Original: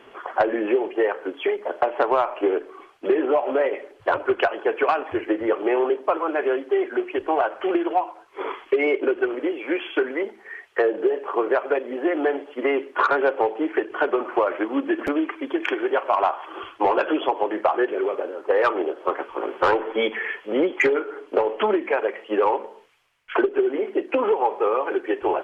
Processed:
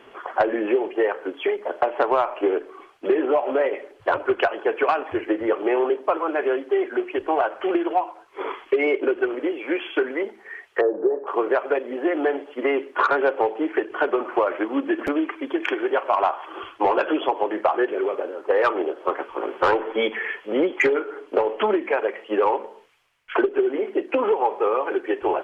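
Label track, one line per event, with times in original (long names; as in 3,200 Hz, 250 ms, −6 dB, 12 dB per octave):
10.810000	11.270000	low-pass filter 1,200 Hz 24 dB per octave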